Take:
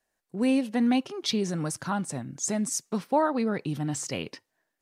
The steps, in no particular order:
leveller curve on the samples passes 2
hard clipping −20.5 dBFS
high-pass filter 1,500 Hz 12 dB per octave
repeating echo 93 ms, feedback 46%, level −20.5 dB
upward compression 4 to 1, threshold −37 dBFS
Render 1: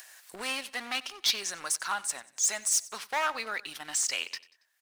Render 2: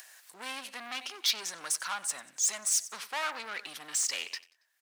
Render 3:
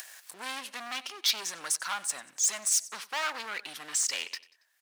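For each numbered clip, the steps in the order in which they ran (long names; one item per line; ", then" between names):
hard clipping, then high-pass filter, then leveller curve on the samples, then upward compression, then repeating echo
repeating echo, then hard clipping, then leveller curve on the samples, then upward compression, then high-pass filter
upward compression, then leveller curve on the samples, then repeating echo, then hard clipping, then high-pass filter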